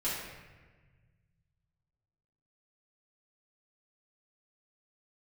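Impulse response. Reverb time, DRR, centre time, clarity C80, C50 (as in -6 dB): 1.4 s, -10.5 dB, 81 ms, 2.5 dB, 0.0 dB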